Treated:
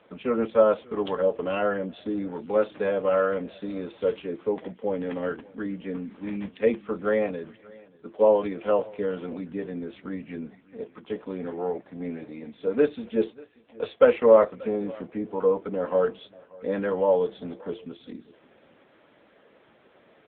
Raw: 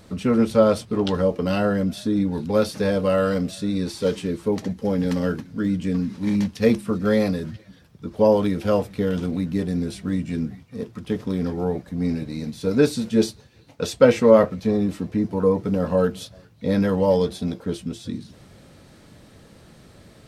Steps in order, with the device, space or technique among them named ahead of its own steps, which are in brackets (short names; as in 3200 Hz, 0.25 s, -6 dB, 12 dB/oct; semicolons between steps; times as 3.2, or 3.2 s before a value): satellite phone (BPF 400–3300 Hz; echo 0.585 s -23.5 dB; AMR-NB 6.7 kbps 8000 Hz)